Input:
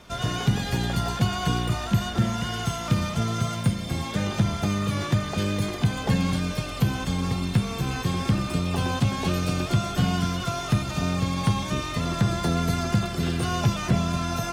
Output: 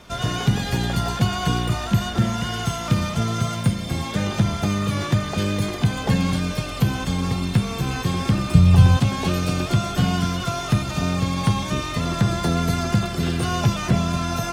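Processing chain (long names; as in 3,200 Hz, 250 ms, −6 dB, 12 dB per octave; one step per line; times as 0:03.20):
0:08.54–0:08.97: low shelf with overshoot 190 Hz +11.5 dB, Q 1.5
level +3 dB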